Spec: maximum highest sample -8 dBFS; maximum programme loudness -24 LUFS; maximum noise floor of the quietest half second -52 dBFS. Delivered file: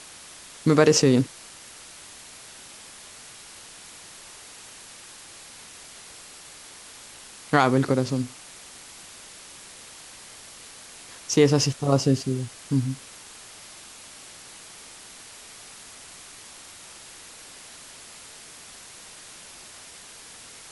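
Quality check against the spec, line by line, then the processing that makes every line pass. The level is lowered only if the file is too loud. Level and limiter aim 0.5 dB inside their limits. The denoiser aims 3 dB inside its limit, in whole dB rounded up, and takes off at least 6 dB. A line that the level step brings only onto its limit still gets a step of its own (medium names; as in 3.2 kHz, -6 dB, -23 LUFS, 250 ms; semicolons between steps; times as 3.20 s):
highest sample -5.0 dBFS: fail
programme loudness -22.5 LUFS: fail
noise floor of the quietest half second -45 dBFS: fail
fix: noise reduction 8 dB, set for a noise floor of -45 dBFS; trim -2 dB; peak limiter -8.5 dBFS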